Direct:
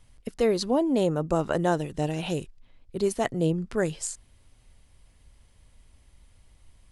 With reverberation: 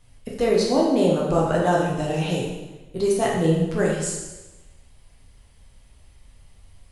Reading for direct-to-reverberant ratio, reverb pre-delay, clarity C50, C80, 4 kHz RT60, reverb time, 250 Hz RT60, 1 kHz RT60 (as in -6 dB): -4.0 dB, 5 ms, 1.0 dB, 4.0 dB, 1.0 s, 1.1 s, 1.1 s, 1.1 s